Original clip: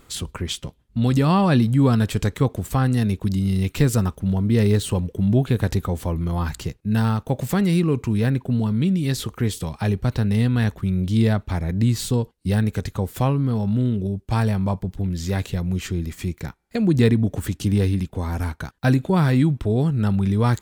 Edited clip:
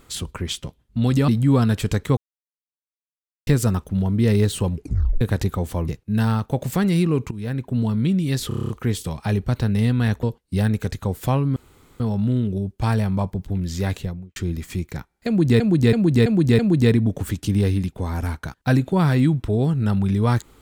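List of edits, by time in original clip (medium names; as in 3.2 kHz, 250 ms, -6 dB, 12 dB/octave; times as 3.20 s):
1.28–1.59 s: delete
2.48–3.78 s: mute
5.04 s: tape stop 0.48 s
6.19–6.65 s: delete
8.08–8.58 s: fade in linear, from -15.5 dB
9.25 s: stutter 0.03 s, 8 plays
10.79–12.16 s: delete
13.49 s: insert room tone 0.44 s
15.41–15.85 s: studio fade out
16.76–17.09 s: loop, 5 plays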